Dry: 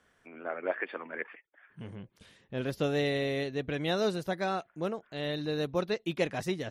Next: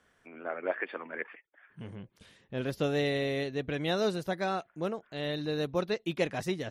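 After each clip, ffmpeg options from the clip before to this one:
ffmpeg -i in.wav -af anull out.wav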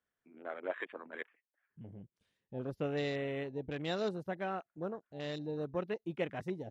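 ffmpeg -i in.wav -af "afwtdn=0.01,volume=-6dB" out.wav

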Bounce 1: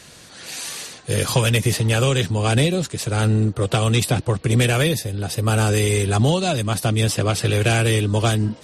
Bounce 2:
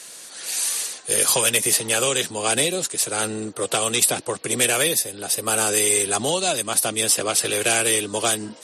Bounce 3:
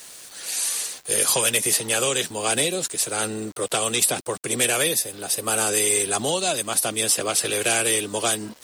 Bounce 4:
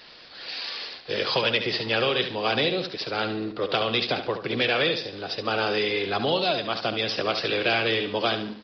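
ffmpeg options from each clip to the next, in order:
ffmpeg -i in.wav -af "highpass=350,equalizer=frequency=10000:width=0.73:gain=12.5,volume=-1dB" out.wav
ffmpeg -i in.wav -af "acontrast=21,aeval=exprs='val(0)*gte(abs(val(0)),0.0168)':channel_layout=same,volume=-6dB" out.wav
ffmpeg -i in.wav -filter_complex "[0:a]asplit=2[link_01][link_02];[link_02]aecho=0:1:71|142|213|284:0.355|0.128|0.046|0.0166[link_03];[link_01][link_03]amix=inputs=2:normalize=0,aresample=11025,aresample=44100" out.wav

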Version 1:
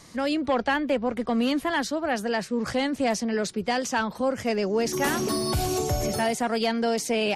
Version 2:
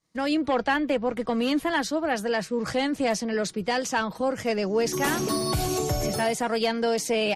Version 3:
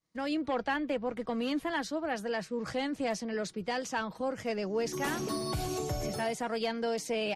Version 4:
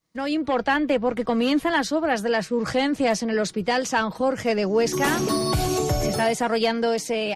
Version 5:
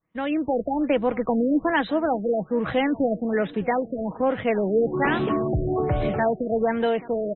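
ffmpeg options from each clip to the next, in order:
ffmpeg -i in.wav -af "agate=range=-33dB:threshold=-34dB:ratio=3:detection=peak,aecho=1:1:6.3:0.3" out.wav
ffmpeg -i in.wav -af "highshelf=frequency=8000:gain=-5.5,volume=-7.5dB" out.wav
ffmpeg -i in.wav -af "dynaudnorm=framelen=130:gausssize=9:maxgain=4dB,volume=7dB" out.wav
ffmpeg -i in.wav -af "aecho=1:1:607|1214|1821:0.0891|0.0401|0.018,afftfilt=real='re*lt(b*sr/1024,670*pow(4100/670,0.5+0.5*sin(2*PI*1.2*pts/sr)))':imag='im*lt(b*sr/1024,670*pow(4100/670,0.5+0.5*sin(2*PI*1.2*pts/sr)))':win_size=1024:overlap=0.75" out.wav

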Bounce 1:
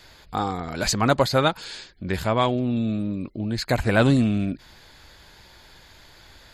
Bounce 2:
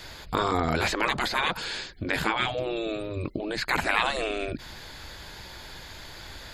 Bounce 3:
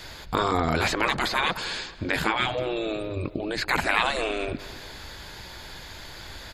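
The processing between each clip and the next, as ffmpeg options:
ffmpeg -i in.wav -filter_complex "[0:a]afftfilt=real='re*lt(hypot(re,im),0.178)':imag='im*lt(hypot(re,im),0.178)':win_size=1024:overlap=0.75,acrossover=split=3200[link_01][link_02];[link_02]acompressor=threshold=-44dB:ratio=4:attack=1:release=60[link_03];[link_01][link_03]amix=inputs=2:normalize=0,volume=7dB" out.wav
ffmpeg -i in.wav -filter_complex "[0:a]asplit=2[link_01][link_02];[link_02]adelay=215,lowpass=frequency=4000:poles=1,volume=-16dB,asplit=2[link_03][link_04];[link_04]adelay=215,lowpass=frequency=4000:poles=1,volume=0.47,asplit=2[link_05][link_06];[link_06]adelay=215,lowpass=frequency=4000:poles=1,volume=0.47,asplit=2[link_07][link_08];[link_08]adelay=215,lowpass=frequency=4000:poles=1,volume=0.47[link_09];[link_01][link_03][link_05][link_07][link_09]amix=inputs=5:normalize=0,volume=1.5dB" out.wav

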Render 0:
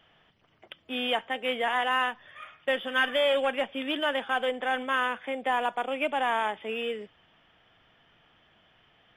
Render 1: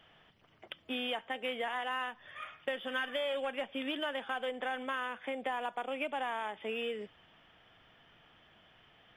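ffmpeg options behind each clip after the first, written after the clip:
ffmpeg -i in.wav -af "acompressor=threshold=-34dB:ratio=4" out.wav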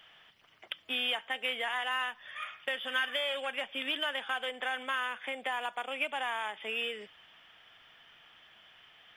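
ffmpeg -i in.wav -af "tiltshelf=frequency=810:gain=-8" out.wav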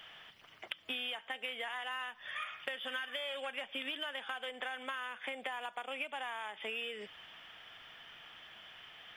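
ffmpeg -i in.wav -af "acompressor=threshold=-42dB:ratio=6,volume=4.5dB" out.wav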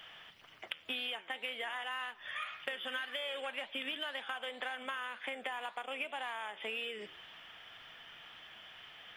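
ffmpeg -i in.wav -af "flanger=delay=5.9:depth=7.3:regen=89:speed=1.9:shape=triangular,volume=5dB" out.wav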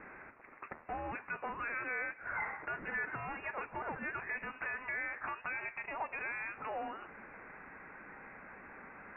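ffmpeg -i in.wav -af "asoftclip=type=hard:threshold=-35.5dB,highpass=frequency=920:width=0.5412,highpass=frequency=920:width=1.3066,lowpass=frequency=2800:width_type=q:width=0.5098,lowpass=frequency=2800:width_type=q:width=0.6013,lowpass=frequency=2800:width_type=q:width=0.9,lowpass=frequency=2800:width_type=q:width=2.563,afreqshift=-3300,volume=4.5dB" out.wav

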